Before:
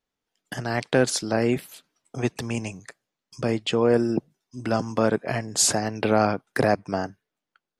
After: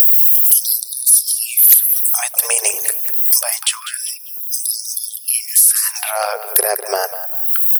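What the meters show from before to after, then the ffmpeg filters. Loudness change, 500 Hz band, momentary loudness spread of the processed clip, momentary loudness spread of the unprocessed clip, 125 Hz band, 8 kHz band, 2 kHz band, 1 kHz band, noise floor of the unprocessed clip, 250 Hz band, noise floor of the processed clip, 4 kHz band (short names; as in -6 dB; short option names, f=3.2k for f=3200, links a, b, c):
+12.0 dB, -3.0 dB, 13 LU, 14 LU, under -40 dB, +16.5 dB, +3.0 dB, +2.0 dB, under -85 dBFS, under -20 dB, -32 dBFS, +8.0 dB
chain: -filter_complex "[0:a]acompressor=mode=upward:threshold=-31dB:ratio=2.5,aemphasis=mode=production:type=50fm,acompressor=threshold=-30dB:ratio=20,equalizer=f=5.8k:w=4.1:g=9.5,asplit=2[a][b];[b]adelay=198,lowpass=f=4k:p=1,volume=-12.5dB,asplit=2[c][d];[d]adelay=198,lowpass=f=4k:p=1,volume=0.41,asplit=2[e][f];[f]adelay=198,lowpass=f=4k:p=1,volume=0.41,asplit=2[g][h];[h]adelay=198,lowpass=f=4k:p=1,volume=0.41[i];[c][e][g][i]amix=inputs=4:normalize=0[j];[a][j]amix=inputs=2:normalize=0,aexciter=amount=15.3:drive=9.5:freq=10k,aeval=exprs='2.51*sin(PI/2*4.47*val(0)/2.51)':c=same,aeval=exprs='val(0)+0.141*(sin(2*PI*60*n/s)+sin(2*PI*2*60*n/s)/2+sin(2*PI*3*60*n/s)/3+sin(2*PI*4*60*n/s)/4+sin(2*PI*5*60*n/s)/5)':c=same,alimiter=level_in=3dB:limit=-1dB:release=50:level=0:latency=1,afftfilt=real='re*gte(b*sr/1024,350*pow(3600/350,0.5+0.5*sin(2*PI*0.26*pts/sr)))':imag='im*gte(b*sr/1024,350*pow(3600/350,0.5+0.5*sin(2*PI*0.26*pts/sr)))':win_size=1024:overlap=0.75,volume=-1dB"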